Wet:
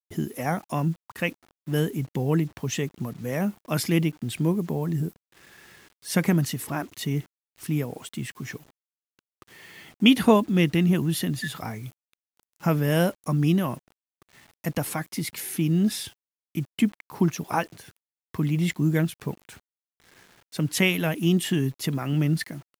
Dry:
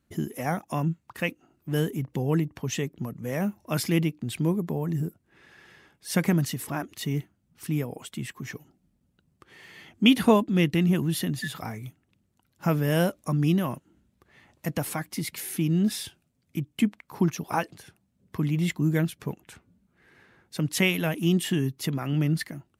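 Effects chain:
bit reduction 9 bits
level +1.5 dB

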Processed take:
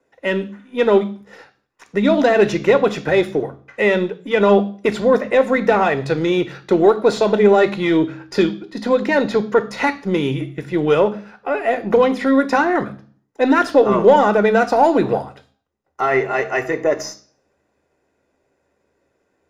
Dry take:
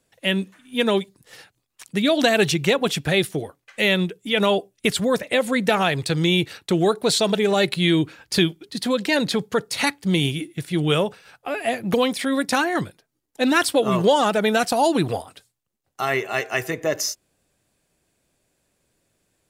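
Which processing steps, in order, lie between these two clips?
gain on one half-wave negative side −3 dB
mid-hump overdrive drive 13 dB, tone 4,600 Hz, clips at −4.5 dBFS
convolution reverb RT60 0.45 s, pre-delay 3 ms, DRR 9.5 dB
level −10 dB

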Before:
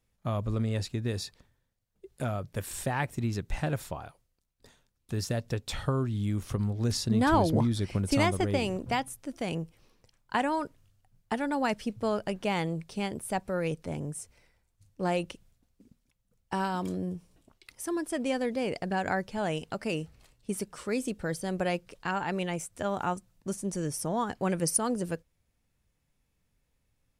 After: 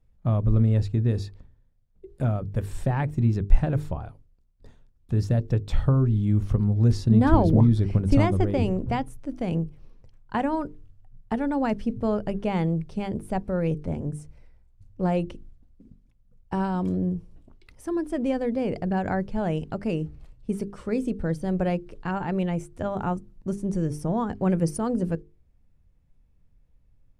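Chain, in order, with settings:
spectral tilt −3.5 dB per octave
mains-hum notches 50/100/150/200/250/300/350/400/450 Hz

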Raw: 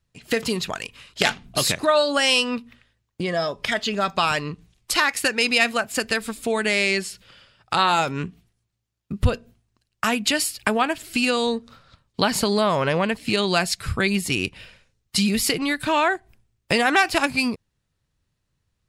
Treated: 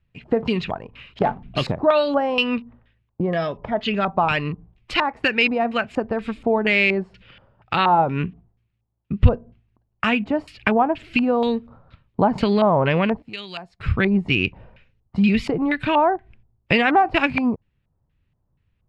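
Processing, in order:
0:13.22–0:13.80: first-order pre-emphasis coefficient 0.9
auto-filter low-pass square 2.1 Hz 860–2,600 Hz
low-shelf EQ 390 Hz +9.5 dB
level −3 dB

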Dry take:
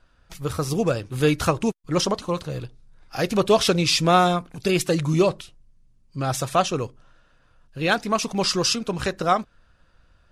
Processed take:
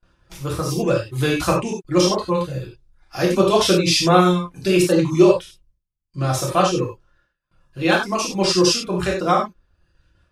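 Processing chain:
reverb reduction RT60 0.87 s
noise gate with hold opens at −50 dBFS
convolution reverb, pre-delay 3 ms, DRR −3.5 dB
level −1.5 dB

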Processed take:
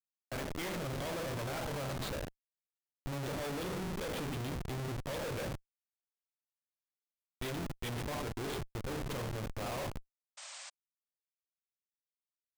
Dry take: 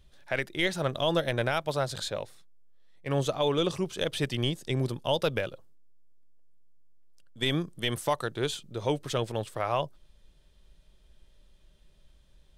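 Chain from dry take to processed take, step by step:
reverb whose tail is shaped and stops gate 240 ms falling, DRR 2 dB
comparator with hysteresis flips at −30.5 dBFS
sound drawn into the spectrogram noise, 0:10.37–0:10.70, 530–8,900 Hz −41 dBFS
level −7.5 dB

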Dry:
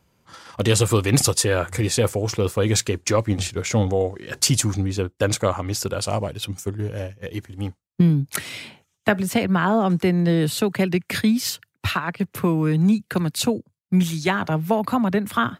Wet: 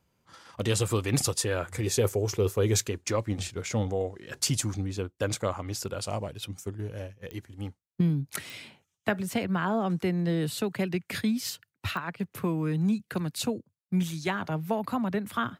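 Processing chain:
0:01.86–0:02.88: thirty-one-band graphic EQ 100 Hz +5 dB, 400 Hz +10 dB, 6,300 Hz +5 dB, 12,500 Hz +9 dB
digital clicks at 0:07.31/0:08.50/0:11.97, −16 dBFS
level −8.5 dB

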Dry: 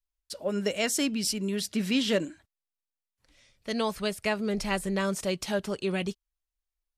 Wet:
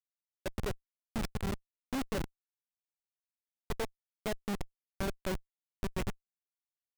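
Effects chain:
loose part that buzzes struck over −36 dBFS, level −24 dBFS
gate pattern "....x.xx" 156 BPM −24 dB
on a send: single-tap delay 111 ms −19.5 dB
on the sum: comparator with hysteresis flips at −25 dBFS
level +1.5 dB

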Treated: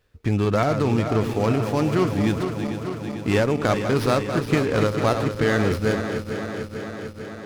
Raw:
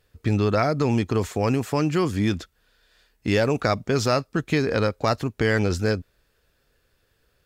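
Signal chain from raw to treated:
feedback delay that plays each chunk backwards 223 ms, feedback 83%, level −8.5 dB
windowed peak hold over 5 samples

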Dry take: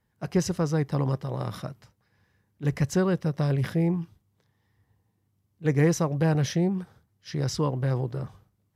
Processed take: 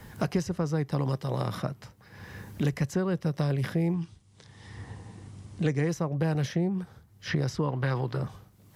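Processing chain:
0:03.93–0:05.89: Butterworth low-pass 9,900 Hz 72 dB per octave
0:07.68–0:08.17: flat-topped bell 2,100 Hz +8.5 dB 2.8 octaves
multiband upward and downward compressor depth 100%
level −3 dB

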